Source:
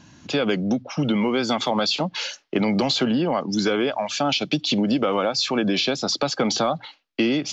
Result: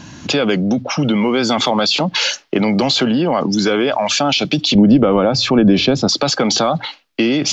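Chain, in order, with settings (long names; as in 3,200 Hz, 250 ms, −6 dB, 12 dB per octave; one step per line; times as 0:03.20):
0:04.75–0:06.09: spectral tilt −3.5 dB per octave
in parallel at −2 dB: compressor whose output falls as the input rises −30 dBFS, ratio −1
on the sum: level +4 dB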